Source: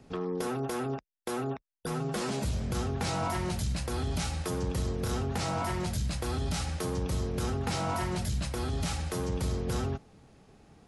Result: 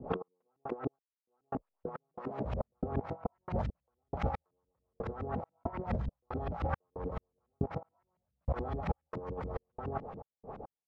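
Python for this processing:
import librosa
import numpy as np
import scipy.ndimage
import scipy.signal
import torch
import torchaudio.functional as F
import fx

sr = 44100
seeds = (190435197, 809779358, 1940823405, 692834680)

y = fx.step_gate(x, sr, bpm=69, pattern='x..x...xx.xx.xx.', floor_db=-60.0, edge_ms=4.5)
y = fx.band_shelf(y, sr, hz=760.0, db=11.0, octaves=1.7)
y = fx.filter_lfo_lowpass(y, sr, shape='saw_up', hz=7.1, low_hz=220.0, high_hz=2600.0, q=1.7)
y = fx.dynamic_eq(y, sr, hz=1900.0, q=1.9, threshold_db=-50.0, ratio=4.0, max_db=5)
y = fx.over_compress(y, sr, threshold_db=-33.0, ratio=-0.5)
y = y * librosa.db_to_amplitude(-1.5)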